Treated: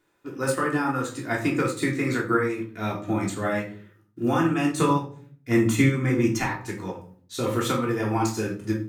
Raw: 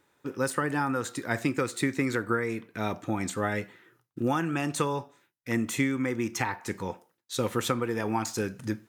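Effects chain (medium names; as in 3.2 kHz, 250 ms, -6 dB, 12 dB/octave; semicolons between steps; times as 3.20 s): 4.76–6.41 s: bass shelf 230 Hz +8 dB; simulated room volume 490 m³, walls furnished, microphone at 3.2 m; upward expansion 1.5:1, over -31 dBFS; trim +1.5 dB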